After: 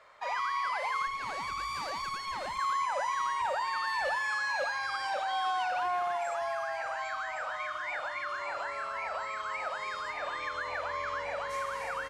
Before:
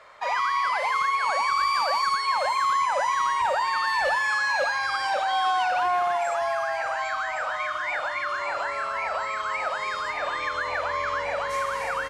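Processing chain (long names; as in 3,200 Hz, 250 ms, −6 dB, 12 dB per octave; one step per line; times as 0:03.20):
0:01.07–0:02.59: tube saturation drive 24 dB, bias 0.7
level −7.5 dB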